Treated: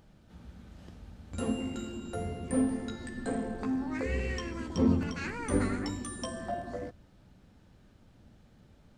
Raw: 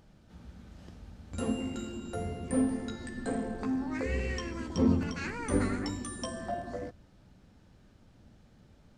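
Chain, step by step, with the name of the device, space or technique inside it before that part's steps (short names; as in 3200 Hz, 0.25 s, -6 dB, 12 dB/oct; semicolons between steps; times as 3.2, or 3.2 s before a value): exciter from parts (in parallel at -13 dB: HPF 4000 Hz 12 dB/oct + soft clip -39 dBFS, distortion -13 dB + HPF 3700 Hz 24 dB/oct)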